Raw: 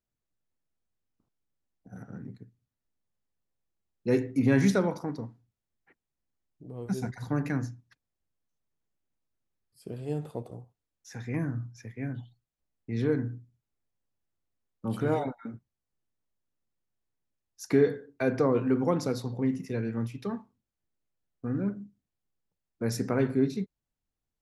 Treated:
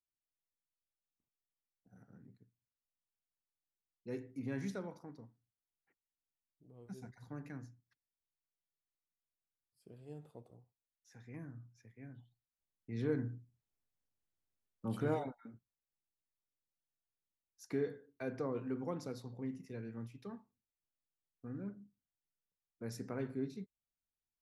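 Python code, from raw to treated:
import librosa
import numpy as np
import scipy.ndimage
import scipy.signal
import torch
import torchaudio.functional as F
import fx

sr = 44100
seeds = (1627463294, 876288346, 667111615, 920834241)

y = fx.gain(x, sr, db=fx.line((12.16, -17.5), (13.22, -7.0), (15.08, -7.0), (15.49, -14.0)))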